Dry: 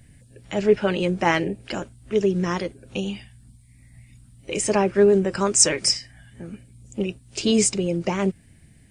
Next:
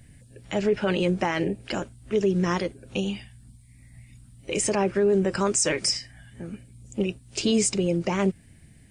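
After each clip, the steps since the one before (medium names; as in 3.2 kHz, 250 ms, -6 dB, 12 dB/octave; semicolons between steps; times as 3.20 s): peak limiter -14 dBFS, peak gain reduction 10.5 dB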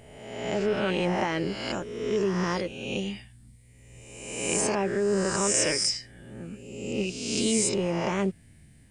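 reverse spectral sustain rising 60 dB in 1.18 s; trim -5 dB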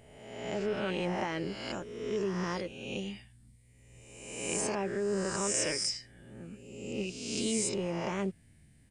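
resampled via 32 kHz; trim -6.5 dB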